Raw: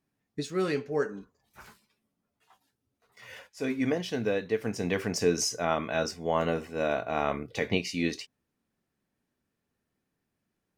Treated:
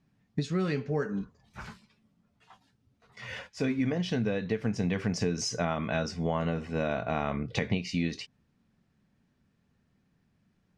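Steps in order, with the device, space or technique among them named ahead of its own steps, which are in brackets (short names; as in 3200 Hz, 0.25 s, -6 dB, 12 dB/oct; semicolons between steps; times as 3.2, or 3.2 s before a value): jukebox (LPF 5700 Hz 12 dB/oct; resonant low shelf 250 Hz +6.5 dB, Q 1.5; compressor 5:1, threshold -33 dBFS, peak gain reduction 14 dB); gain +6.5 dB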